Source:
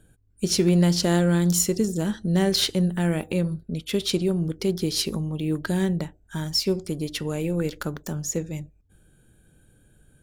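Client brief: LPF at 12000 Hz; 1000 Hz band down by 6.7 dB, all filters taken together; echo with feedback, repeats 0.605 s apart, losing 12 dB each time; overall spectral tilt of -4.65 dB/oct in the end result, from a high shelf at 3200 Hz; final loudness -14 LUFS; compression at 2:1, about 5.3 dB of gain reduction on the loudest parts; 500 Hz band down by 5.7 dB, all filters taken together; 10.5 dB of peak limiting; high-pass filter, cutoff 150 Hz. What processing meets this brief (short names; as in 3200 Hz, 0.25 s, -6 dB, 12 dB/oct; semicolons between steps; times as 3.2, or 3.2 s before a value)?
HPF 150 Hz; LPF 12000 Hz; bell 500 Hz -7 dB; bell 1000 Hz -7 dB; high shelf 3200 Hz +4 dB; compressor 2:1, threshold -26 dBFS; limiter -22 dBFS; feedback echo 0.605 s, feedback 25%, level -12 dB; gain +17 dB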